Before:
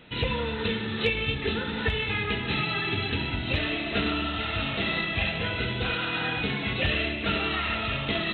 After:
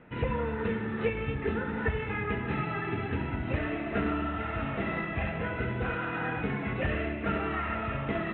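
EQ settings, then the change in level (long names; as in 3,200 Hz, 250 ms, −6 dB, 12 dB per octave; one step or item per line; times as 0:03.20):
low-pass filter 1,900 Hz 24 dB per octave
mains-hum notches 50/100 Hz
−1.0 dB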